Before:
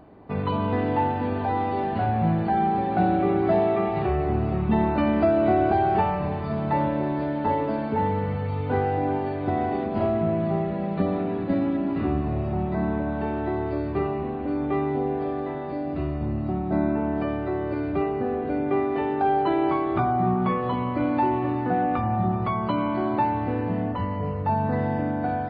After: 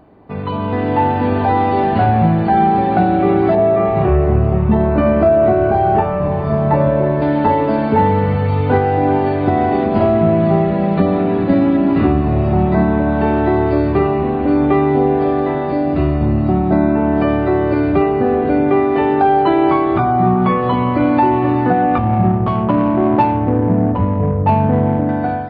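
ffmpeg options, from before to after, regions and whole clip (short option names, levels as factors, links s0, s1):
-filter_complex "[0:a]asettb=1/sr,asplit=3[s0][s1][s2];[s0]atrim=end=3.554[s3];[s1]atrim=start=3.55:end=7.22,asetpts=PTS-STARTPTS,afade=t=in:d=0.004:c=qsin,afade=t=out:st=3.666:d=0.004:c=qsin,lowpass=f=1200:p=1,asplit=2[s4][s5];[s5]adelay=29,volume=0.631[s6];[s4][s6]amix=inputs=2:normalize=0,atrim=end_sample=161847[s7];[s2]atrim=start=7.216[s8];[s3][s7]acrossfade=d=0.004:c1=hsin:c2=qsin[s9];[s9][s8]acrossfade=d=0.004:c1=qsin:c2=hsin,asettb=1/sr,asplit=3[s10][s11][s12];[s10]atrim=end=21.984[s13];[s11]atrim=start=21.98:end=25.09,asetpts=PTS-STARTPTS,afade=t=in:d=0.004:c=qsin,afade=t=out:st=3.106:d=0.004:c=qsin,equalizer=f=3600:t=o:w=1.1:g=-7.5,adynamicsmooth=sensitivity=0.5:basefreq=680[s14];[s12]atrim=start=25.086[s15];[s13][s14]acrossfade=d=0.004:c1=hsin:c2=qsin[s16];[s16][s15]acrossfade=d=0.004:c1=qsin:c2=hsin,dynaudnorm=f=390:g=5:m=3.76,alimiter=limit=0.501:level=0:latency=1:release=478,volume=1.33"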